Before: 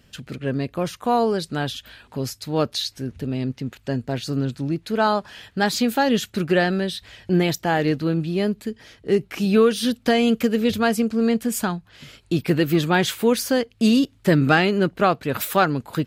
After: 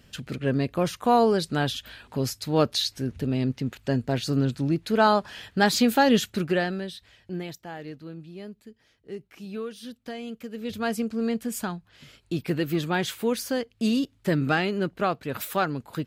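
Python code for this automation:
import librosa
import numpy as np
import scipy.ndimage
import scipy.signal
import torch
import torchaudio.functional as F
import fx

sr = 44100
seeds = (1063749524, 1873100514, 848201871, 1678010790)

y = fx.gain(x, sr, db=fx.line((6.17, 0.0), (6.76, -8.5), (7.75, -18.0), (10.45, -18.0), (10.89, -7.0)))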